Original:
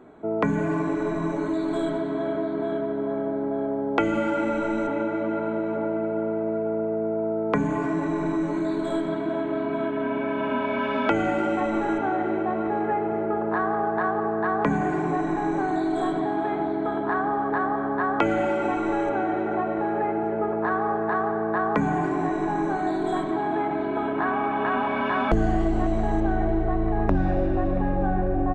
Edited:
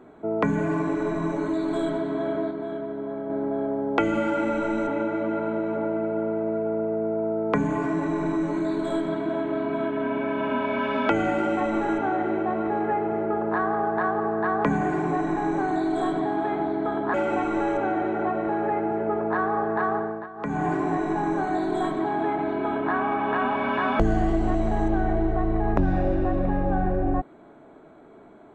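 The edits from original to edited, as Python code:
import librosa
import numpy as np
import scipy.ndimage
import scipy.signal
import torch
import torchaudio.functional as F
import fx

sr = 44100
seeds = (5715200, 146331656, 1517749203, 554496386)

y = fx.edit(x, sr, fx.clip_gain(start_s=2.51, length_s=0.79, db=-4.5),
    fx.cut(start_s=17.14, length_s=1.32),
    fx.fade_down_up(start_s=21.28, length_s=0.71, db=-16.5, fade_s=0.32), tone=tone)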